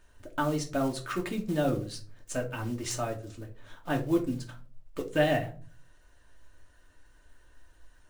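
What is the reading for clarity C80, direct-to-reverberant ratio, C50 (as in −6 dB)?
19.0 dB, 0.5 dB, 13.0 dB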